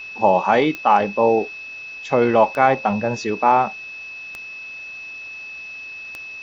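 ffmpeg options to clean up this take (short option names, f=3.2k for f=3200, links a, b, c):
-af "adeclick=t=4,bandreject=f=2.6k:w=30,afwtdn=0.0063"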